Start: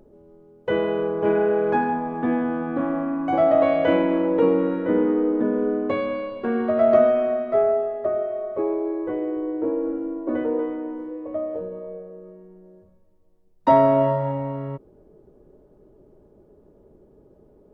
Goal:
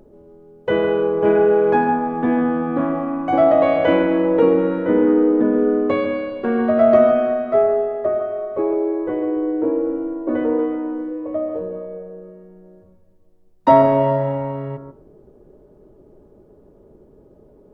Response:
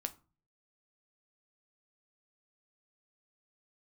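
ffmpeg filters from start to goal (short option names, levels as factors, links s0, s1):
-filter_complex "[0:a]asplit=2[s0][s1];[s1]highshelf=f=2100:t=q:w=1.5:g=-12[s2];[1:a]atrim=start_sample=2205,adelay=142[s3];[s2][s3]afir=irnorm=-1:irlink=0,volume=0.316[s4];[s0][s4]amix=inputs=2:normalize=0,volume=1.58"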